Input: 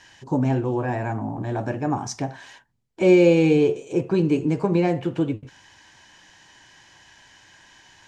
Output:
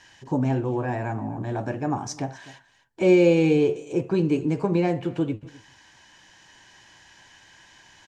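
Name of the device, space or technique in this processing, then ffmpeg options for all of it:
ducked delay: -filter_complex "[0:a]asplit=3[s0][s1][s2];[s1]adelay=254,volume=0.596[s3];[s2]apad=whole_len=367162[s4];[s3][s4]sidechaincompress=threshold=0.0126:ratio=10:attack=16:release=1020[s5];[s0][s5]amix=inputs=2:normalize=0,volume=0.794"

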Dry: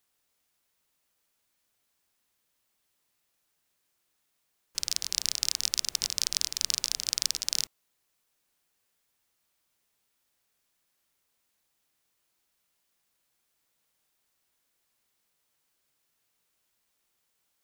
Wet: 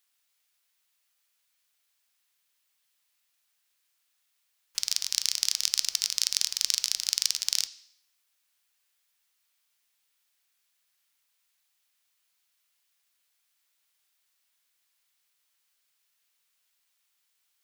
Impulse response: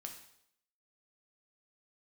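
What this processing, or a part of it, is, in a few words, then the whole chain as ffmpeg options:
filtered reverb send: -filter_complex "[0:a]asplit=2[s0][s1];[s1]highpass=f=280:w=0.5412,highpass=f=280:w=1.3066,lowpass=5300[s2];[1:a]atrim=start_sample=2205[s3];[s2][s3]afir=irnorm=-1:irlink=0,volume=0.794[s4];[s0][s4]amix=inputs=2:normalize=0,tiltshelf=f=1100:g=-8,volume=0.501"

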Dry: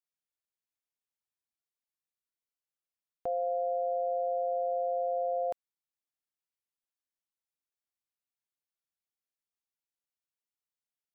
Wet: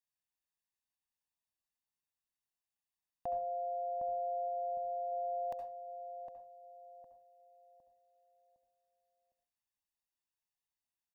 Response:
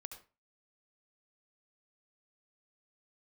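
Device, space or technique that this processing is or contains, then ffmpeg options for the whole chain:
microphone above a desk: -filter_complex "[0:a]asettb=1/sr,asplit=3[s0][s1][s2];[s0]atrim=end=4.484[s3];[s1]atrim=start=4.48:end=5.12,asetpts=PTS-STARTPTS,afade=t=in:d=0.004:c=qsin,afade=t=out:st=0.636:d=0.004:c=qsin,highpass=f=110:p=1[s4];[s2]atrim=start=5.116[s5];[s3][s4]acrossfade=d=0.004:c1=hsin:c2=qsin[s6];[s6][s5]acrossfade=d=0.004:c1=qsin:c2=hsin,aecho=1:1:1.1:0.72[s7];[1:a]atrim=start_sample=2205[s8];[s7][s8]afir=irnorm=-1:irlink=0,asplit=2[s9][s10];[s10]adelay=759,lowpass=f=860:p=1,volume=0.473,asplit=2[s11][s12];[s12]adelay=759,lowpass=f=860:p=1,volume=0.45,asplit=2[s13][s14];[s14]adelay=759,lowpass=f=860:p=1,volume=0.45,asplit=2[s15][s16];[s16]adelay=759,lowpass=f=860:p=1,volume=0.45,asplit=2[s17][s18];[s18]adelay=759,lowpass=f=860:p=1,volume=0.45[s19];[s9][s11][s13][s15][s17][s19]amix=inputs=6:normalize=0,volume=1.12"

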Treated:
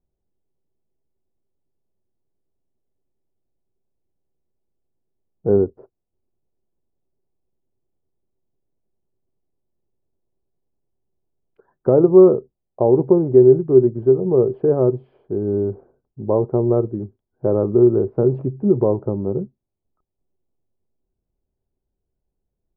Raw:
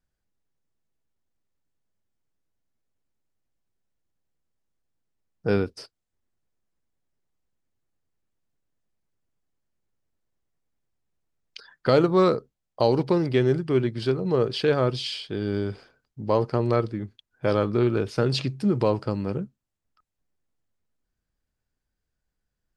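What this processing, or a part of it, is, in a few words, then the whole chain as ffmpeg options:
under water: -af "lowpass=f=840:w=0.5412,lowpass=f=840:w=1.3066,equalizer=f=380:t=o:w=0.21:g=10,volume=1.5"

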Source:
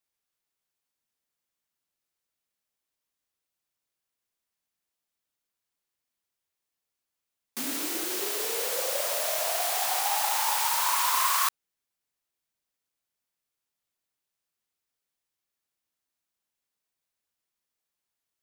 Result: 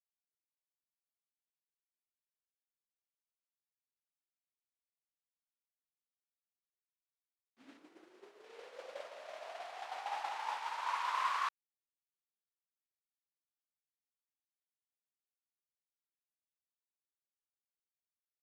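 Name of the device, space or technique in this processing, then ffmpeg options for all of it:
hearing-loss simulation: -filter_complex "[0:a]asettb=1/sr,asplit=3[s0][s1][s2];[s0]atrim=end=7.774[s3];[s1]atrim=start=7.77:end=8.44,asetpts=PTS-STARTPTS,afade=t=in:d=0.004:c=qsin,afade=t=out:st=0.666:d=0.004:c=qsin,equalizer=f=3300:t=o:w=2.1:g=-5[s4];[s2]atrim=start=8.436[s5];[s3][s4]acrossfade=d=0.004:c1=hsin:c2=qsin[s6];[s6][s5]acrossfade=d=0.004:c1=qsin:c2=hsin,lowpass=2600,agate=range=0.0224:threshold=0.0631:ratio=3:detection=peak,volume=0.596"

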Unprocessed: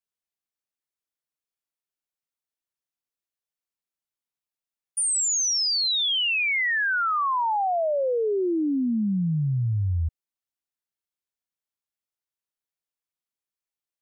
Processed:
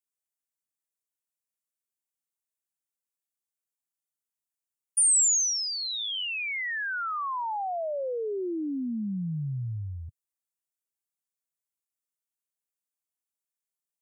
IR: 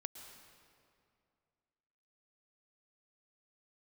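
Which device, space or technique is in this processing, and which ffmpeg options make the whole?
budget condenser microphone: -filter_complex "[0:a]highpass=f=100:w=0.5412,highpass=f=100:w=1.3066,highshelf=f=5900:t=q:w=1.5:g=8,asettb=1/sr,asplit=3[s0][s1][s2];[s0]atrim=end=5.784[s3];[s1]atrim=start=5.78:end=6.25,asetpts=PTS-STARTPTS,afade=t=in:d=0.004:c=qsin,afade=t=out:st=0.466:d=0.004:c=qsin,asplit=2[s4][s5];[s5]adelay=33,volume=0.376[s6];[s4][s6]amix=inputs=2:normalize=0,atrim=end_sample=20727[s7];[s2]atrim=start=6.246[s8];[s3][s7]acrossfade=d=0.004:c1=hsin:c2=qsin[s9];[s9][s8]acrossfade=d=0.004:c1=qsin:c2=hsin,volume=0.447"

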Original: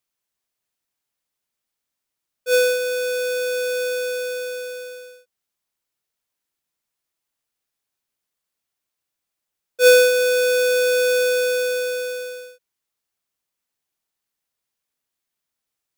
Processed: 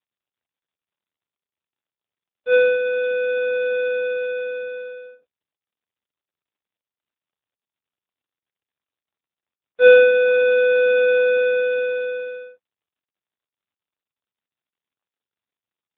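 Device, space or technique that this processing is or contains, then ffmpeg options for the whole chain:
mobile call with aggressive noise cancelling: -filter_complex "[0:a]asplit=3[s0][s1][s2];[s0]afade=t=out:st=3.23:d=0.02[s3];[s1]highshelf=f=10000:g=5,afade=t=in:st=3.23:d=0.02,afade=t=out:st=5.02:d=0.02[s4];[s2]afade=t=in:st=5.02:d=0.02[s5];[s3][s4][s5]amix=inputs=3:normalize=0,highpass=110,afftdn=nr=15:nf=-40,volume=1.33" -ar 8000 -c:a libopencore_amrnb -b:a 7950

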